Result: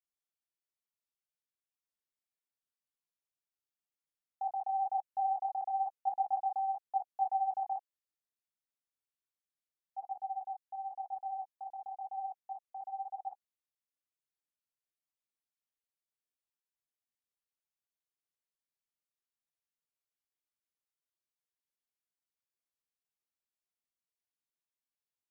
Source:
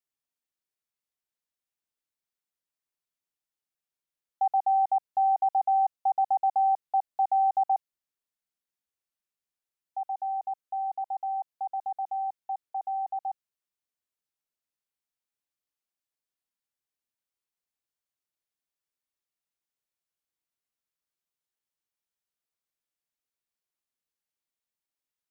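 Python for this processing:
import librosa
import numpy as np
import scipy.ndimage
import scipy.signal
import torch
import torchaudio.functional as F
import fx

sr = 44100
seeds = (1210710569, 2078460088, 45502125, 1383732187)

y = fx.detune_double(x, sr, cents=34)
y = F.gain(torch.from_numpy(y), -4.5).numpy()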